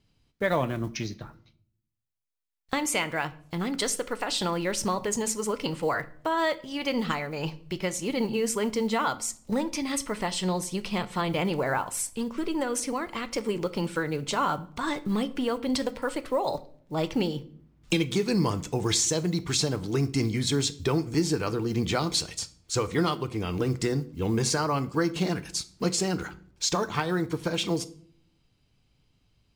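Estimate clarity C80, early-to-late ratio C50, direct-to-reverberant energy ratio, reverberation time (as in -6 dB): 22.0 dB, 18.5 dB, 11.5 dB, 0.55 s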